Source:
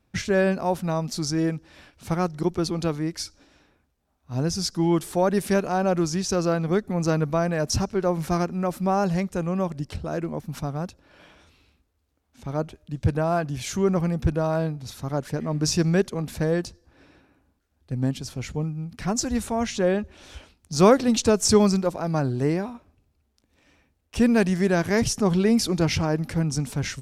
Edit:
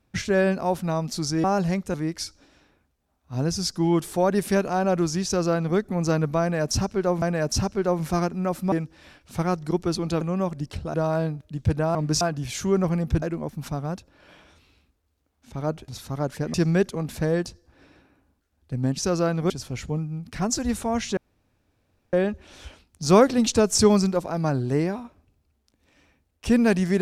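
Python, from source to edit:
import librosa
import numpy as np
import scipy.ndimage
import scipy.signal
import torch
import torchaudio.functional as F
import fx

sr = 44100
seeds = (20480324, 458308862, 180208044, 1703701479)

y = fx.edit(x, sr, fx.swap(start_s=1.44, length_s=1.49, other_s=8.9, other_length_s=0.5),
    fx.duplicate(start_s=6.23, length_s=0.53, to_s=18.16),
    fx.repeat(start_s=7.4, length_s=0.81, count=2),
    fx.swap(start_s=10.13, length_s=2.66, other_s=14.34, other_length_s=0.47),
    fx.move(start_s=15.47, length_s=0.26, to_s=13.33),
    fx.insert_room_tone(at_s=19.83, length_s=0.96), tone=tone)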